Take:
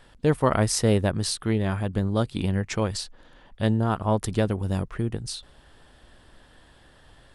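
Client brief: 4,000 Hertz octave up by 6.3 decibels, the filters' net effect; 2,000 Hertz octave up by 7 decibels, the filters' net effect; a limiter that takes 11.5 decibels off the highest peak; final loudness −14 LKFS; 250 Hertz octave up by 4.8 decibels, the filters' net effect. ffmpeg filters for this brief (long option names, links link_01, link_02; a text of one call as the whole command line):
ffmpeg -i in.wav -af "equalizer=frequency=250:width_type=o:gain=6,equalizer=frequency=2000:width_type=o:gain=7.5,equalizer=frequency=4000:width_type=o:gain=6,volume=13dB,alimiter=limit=-3dB:level=0:latency=1" out.wav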